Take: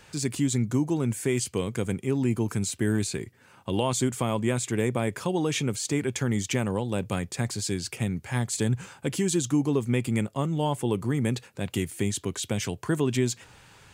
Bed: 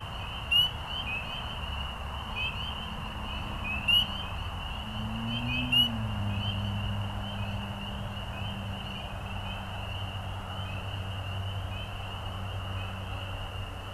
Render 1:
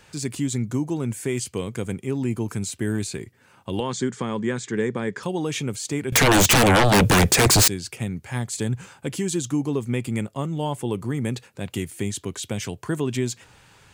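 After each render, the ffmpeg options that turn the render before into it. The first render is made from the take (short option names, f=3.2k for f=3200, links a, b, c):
-filter_complex "[0:a]asettb=1/sr,asplit=3[a][b][c];[a]atrim=end=3.804[d];[b]atrim=start=3.8:end=5.23,asetpts=PTS-STARTPTS,afade=t=in:d=0.004:c=qsin,afade=t=out:st=1.426:d=0.004:c=qsin,highpass=140,equalizer=f=190:t=q:w=4:g=7,equalizer=f=430:t=q:w=4:g=5,equalizer=f=650:t=q:w=4:g=-9,equalizer=f=1.7k:t=q:w=4:g=7,equalizer=f=2.6k:t=q:w=4:g=-6,lowpass=f=6.9k:w=0.5412,lowpass=f=6.9k:w=1.3066[e];[c]atrim=start=5.226[f];[d][e]acrossfade=d=0.004:c1=hsin:c2=qsin[g];[g][f]acrossfade=d=0.004:c1=qsin:c2=hsin,asettb=1/sr,asplit=3[h][i][j];[h]atrim=end=6.124[k];[i]atrim=start=6.12:end=7.68,asetpts=PTS-STARTPTS,afade=t=in:d=0.004:c=qsin,afade=t=out:st=1.556:d=0.004:c=qsin,aeval=exprs='0.251*sin(PI/2*8.91*val(0)/0.251)':c=same[l];[j]atrim=start=7.676[m];[k][l]acrossfade=d=0.004:c1=hsin:c2=qsin[n];[n][m]acrossfade=d=0.004:c1=qsin:c2=hsin"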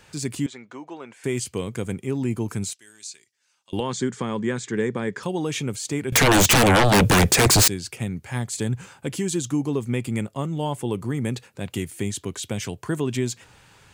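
-filter_complex "[0:a]asettb=1/sr,asplit=3[a][b][c];[a]atrim=end=0.464[d];[b]atrim=start=0.46:end=1.24,asetpts=PTS-STARTPTS,afade=t=in:d=0.004:c=qsin,afade=t=out:st=0.776:d=0.004:c=qsin,highpass=640,lowpass=3k[e];[c]atrim=start=1.236[f];[d][e]acrossfade=d=0.004:c1=hsin:c2=qsin[g];[g][f]acrossfade=d=0.004:c1=qsin:c2=hsin,asettb=1/sr,asplit=3[h][i][j];[h]atrim=end=2.734[k];[i]atrim=start=2.73:end=3.73,asetpts=PTS-STARTPTS,afade=t=in:d=0.004:c=qsin,afade=t=out:st=0.996:d=0.004:c=qsin,bandpass=f=5.8k:t=q:w=1.9[l];[j]atrim=start=3.726[m];[k][l]acrossfade=d=0.004:c1=hsin:c2=qsin[n];[n][m]acrossfade=d=0.004:c1=qsin:c2=hsin"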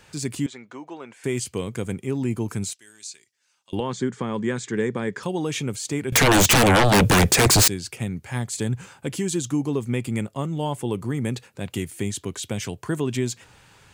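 -filter_complex "[0:a]asettb=1/sr,asplit=3[a][b][c];[a]atrim=end=3.754[d];[b]atrim=start=3.75:end=4.34,asetpts=PTS-STARTPTS,afade=t=in:d=0.004:c=qsin,afade=t=out:st=0.586:d=0.004:c=qsin,highshelf=f=3.7k:g=-8[e];[c]atrim=start=4.336[f];[d][e]acrossfade=d=0.004:c1=hsin:c2=qsin[g];[g][f]acrossfade=d=0.004:c1=qsin:c2=hsin"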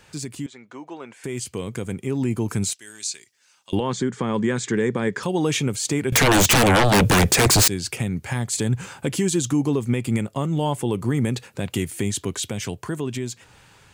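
-af "alimiter=limit=-21dB:level=0:latency=1:release=372,dynaudnorm=f=420:g=9:m=9dB"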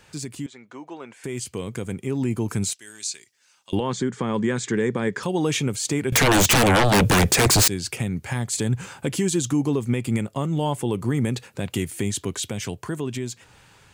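-af "volume=-1dB"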